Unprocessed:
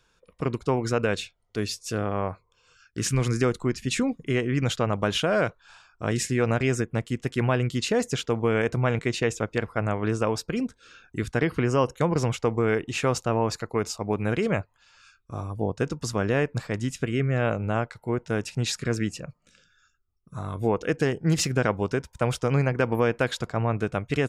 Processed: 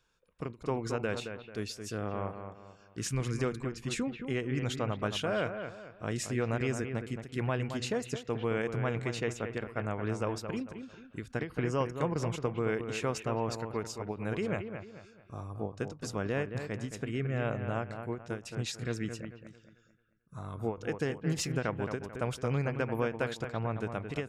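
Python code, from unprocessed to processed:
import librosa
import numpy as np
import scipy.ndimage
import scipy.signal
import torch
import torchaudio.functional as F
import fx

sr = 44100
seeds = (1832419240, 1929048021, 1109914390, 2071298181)

p1 = x + fx.echo_bbd(x, sr, ms=220, stages=4096, feedback_pct=36, wet_db=-8.0, dry=0)
p2 = fx.end_taper(p1, sr, db_per_s=200.0)
y = p2 * librosa.db_to_amplitude(-8.5)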